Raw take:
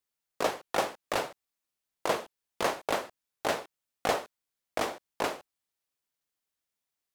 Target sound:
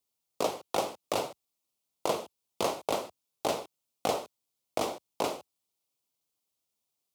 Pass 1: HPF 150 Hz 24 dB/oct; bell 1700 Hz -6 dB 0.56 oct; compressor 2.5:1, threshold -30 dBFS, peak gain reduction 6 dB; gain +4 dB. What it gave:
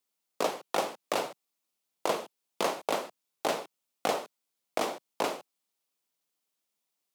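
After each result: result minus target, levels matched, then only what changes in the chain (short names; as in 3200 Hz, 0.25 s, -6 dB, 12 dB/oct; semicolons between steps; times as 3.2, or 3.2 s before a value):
125 Hz band -5.0 dB; 2000 Hz band +4.0 dB
change: HPF 70 Hz 24 dB/oct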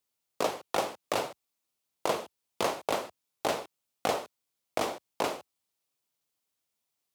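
2000 Hz band +4.0 dB
change: bell 1700 Hz -16.5 dB 0.56 oct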